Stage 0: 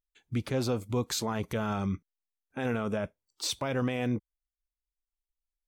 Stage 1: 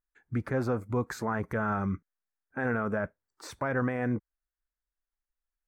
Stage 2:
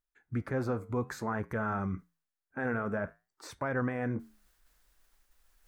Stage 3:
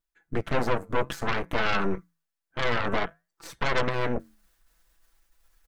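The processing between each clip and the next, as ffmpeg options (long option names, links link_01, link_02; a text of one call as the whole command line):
ffmpeg -i in.wav -af "highshelf=frequency=2300:width_type=q:width=3:gain=-11" out.wav
ffmpeg -i in.wav -af "areverse,acompressor=mode=upward:threshold=-42dB:ratio=2.5,areverse,flanger=delay=6.7:depth=5.6:regen=-81:speed=0.56:shape=triangular,volume=1.5dB" out.wav
ffmpeg -i in.wav -af "aecho=1:1:6:0.77,aeval=exprs='0.141*(cos(1*acos(clip(val(0)/0.141,-1,1)))-cos(1*PI/2))+0.0562*(cos(4*acos(clip(val(0)/0.141,-1,1)))-cos(4*PI/2))+0.0355*(cos(8*acos(clip(val(0)/0.141,-1,1)))-cos(8*PI/2))':channel_layout=same" out.wav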